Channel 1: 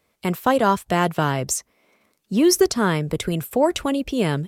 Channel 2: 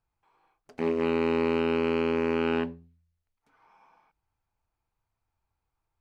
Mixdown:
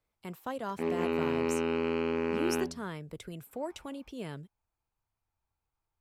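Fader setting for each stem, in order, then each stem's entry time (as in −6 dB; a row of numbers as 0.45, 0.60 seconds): −19.0, −4.5 decibels; 0.00, 0.00 seconds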